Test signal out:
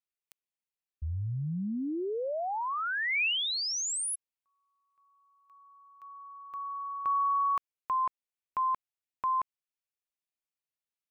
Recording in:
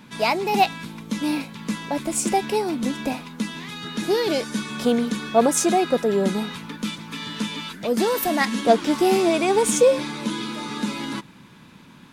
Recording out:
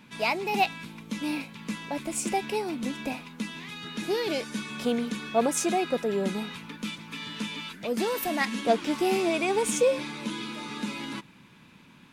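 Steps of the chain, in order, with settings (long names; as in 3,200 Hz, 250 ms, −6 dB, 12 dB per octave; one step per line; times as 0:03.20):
parametric band 2,500 Hz +5.5 dB 0.59 octaves
level −7 dB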